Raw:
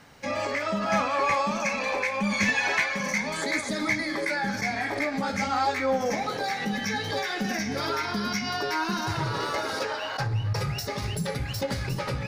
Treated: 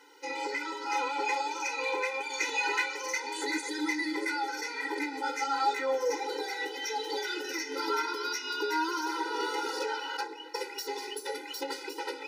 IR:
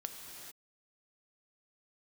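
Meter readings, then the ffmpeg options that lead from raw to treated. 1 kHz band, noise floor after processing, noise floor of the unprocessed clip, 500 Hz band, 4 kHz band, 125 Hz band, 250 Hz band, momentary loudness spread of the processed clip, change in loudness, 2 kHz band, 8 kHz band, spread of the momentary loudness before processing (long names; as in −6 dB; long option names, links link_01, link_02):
−3.5 dB, −43 dBFS, −33 dBFS, −4.5 dB, −3.0 dB, below −40 dB, −8.0 dB, 8 LU, −5.0 dB, −5.0 dB, −3.0 dB, 6 LU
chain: -af "afftfilt=real='re*eq(mod(floor(b*sr/1024/260),2),1)':imag='im*eq(mod(floor(b*sr/1024/260),2),1)':win_size=1024:overlap=0.75"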